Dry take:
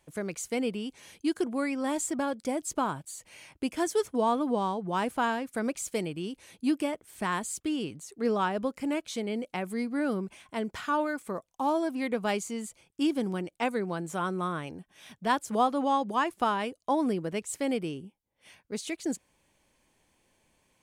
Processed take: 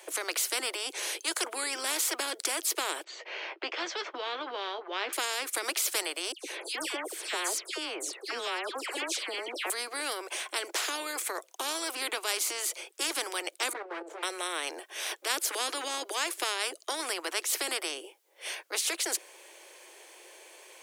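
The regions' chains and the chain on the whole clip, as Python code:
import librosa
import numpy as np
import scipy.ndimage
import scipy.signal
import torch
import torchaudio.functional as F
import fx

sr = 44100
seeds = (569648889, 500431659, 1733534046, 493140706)

y = fx.chain(x, sr, fx.gaussian_blur(sigma=2.6),
    fx.doubler(ms=15.0, db=-11), at=(3.04, 5.13))
y = fx.chain(y, sr, fx.tilt_eq(slope=-3.0),
    fx.dispersion(late='lows', ms=116.0, hz=2500.0), at=(6.32, 9.7))
y = fx.chain(y, sr, fx.lower_of_two(delay_ms=9.1),
    fx.bandpass_q(hz=330.0, q=1.0),
    fx.level_steps(step_db=12), at=(13.73, 14.23))
y = scipy.signal.sosfilt(scipy.signal.butter(16, 340.0, 'highpass', fs=sr, output='sos'), y)
y = fx.peak_eq(y, sr, hz=930.0, db=-3.5, octaves=0.77)
y = fx.spectral_comp(y, sr, ratio=4.0)
y = y * librosa.db_to_amplitude(3.5)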